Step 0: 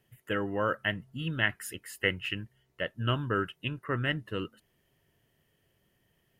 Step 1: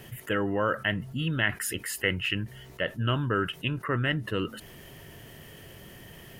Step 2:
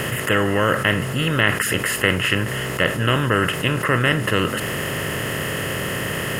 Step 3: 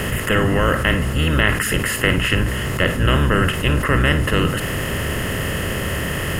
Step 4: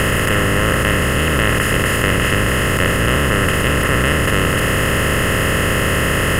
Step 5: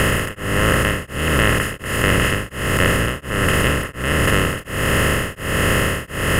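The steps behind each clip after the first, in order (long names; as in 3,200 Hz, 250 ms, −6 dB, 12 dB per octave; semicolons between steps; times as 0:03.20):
envelope flattener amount 50%
compressor on every frequency bin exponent 0.4; level +4.5 dB
sub-octave generator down 1 octave, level +3 dB; flutter between parallel walls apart 9.4 metres, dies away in 0.25 s
compressor on every frequency bin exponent 0.2; level −5 dB
tremolo along a rectified sine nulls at 1.4 Hz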